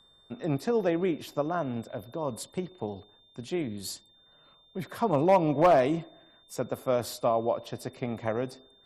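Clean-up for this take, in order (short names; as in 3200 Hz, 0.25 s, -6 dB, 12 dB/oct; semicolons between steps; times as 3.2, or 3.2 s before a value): clip repair -14 dBFS; notch 3600 Hz, Q 30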